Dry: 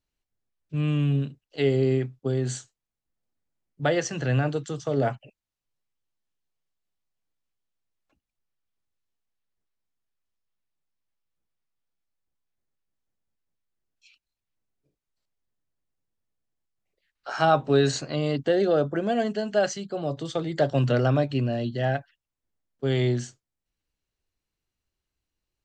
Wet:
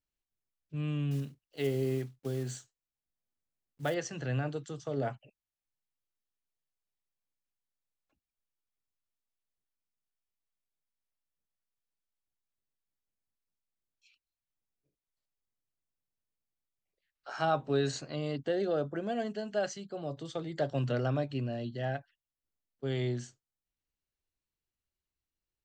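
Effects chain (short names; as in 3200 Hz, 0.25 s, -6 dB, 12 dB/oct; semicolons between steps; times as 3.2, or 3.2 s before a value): 1.11–3.96 block floating point 5-bit; gain -9 dB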